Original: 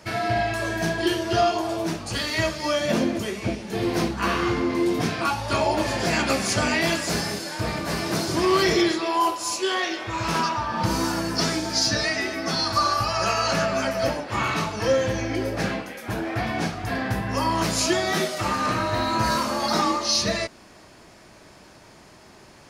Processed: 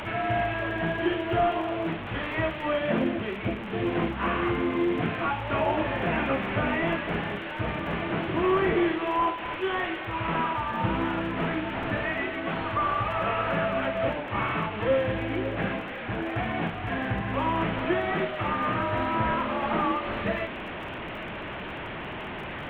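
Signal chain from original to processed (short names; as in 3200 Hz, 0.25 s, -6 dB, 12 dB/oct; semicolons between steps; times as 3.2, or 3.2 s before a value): delta modulation 16 kbps, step -26.5 dBFS; crackle 28/s -40 dBFS; gain -3 dB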